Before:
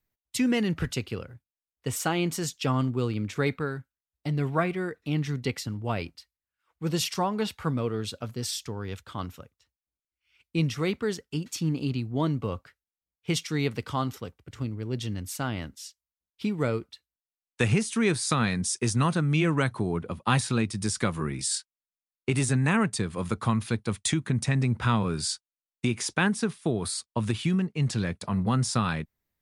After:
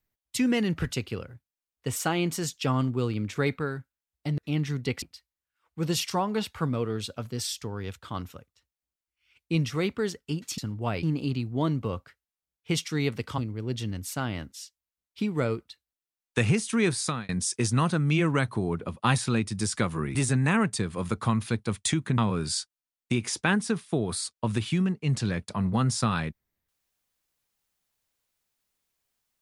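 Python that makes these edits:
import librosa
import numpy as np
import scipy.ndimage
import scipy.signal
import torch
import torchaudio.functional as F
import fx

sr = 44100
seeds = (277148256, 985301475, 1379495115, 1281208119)

y = fx.edit(x, sr, fx.cut(start_s=4.38, length_s=0.59),
    fx.move(start_s=5.61, length_s=0.45, to_s=11.62),
    fx.cut(start_s=13.97, length_s=0.64),
    fx.fade_out_span(start_s=18.22, length_s=0.3),
    fx.cut(start_s=21.38, length_s=0.97),
    fx.cut(start_s=24.38, length_s=0.53), tone=tone)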